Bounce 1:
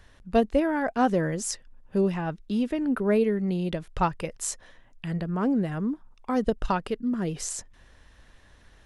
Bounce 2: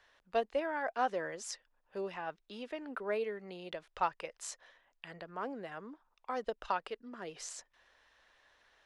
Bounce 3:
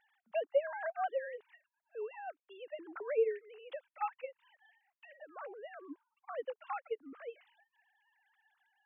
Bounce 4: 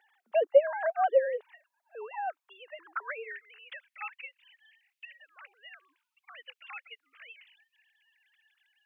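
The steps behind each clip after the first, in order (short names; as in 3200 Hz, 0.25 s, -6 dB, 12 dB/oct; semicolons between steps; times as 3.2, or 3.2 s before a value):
three-band isolator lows -22 dB, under 450 Hz, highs -13 dB, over 6200 Hz; gain -6 dB
sine-wave speech; gain -1 dB
high-pass sweep 390 Hz -> 2500 Hz, 0.76–4.3; gain +5.5 dB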